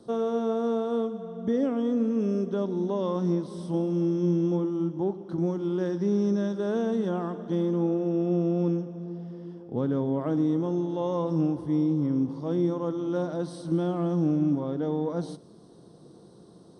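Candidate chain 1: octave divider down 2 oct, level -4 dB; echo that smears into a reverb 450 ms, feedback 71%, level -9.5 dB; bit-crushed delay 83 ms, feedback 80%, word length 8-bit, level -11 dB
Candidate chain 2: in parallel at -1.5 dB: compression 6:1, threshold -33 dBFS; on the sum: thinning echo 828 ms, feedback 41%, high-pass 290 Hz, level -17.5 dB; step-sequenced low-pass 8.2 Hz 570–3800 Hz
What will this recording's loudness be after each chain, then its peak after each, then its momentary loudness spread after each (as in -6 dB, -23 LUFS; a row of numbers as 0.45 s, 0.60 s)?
-25.5 LUFS, -23.5 LUFS; -9.5 dBFS, -9.0 dBFS; 7 LU, 7 LU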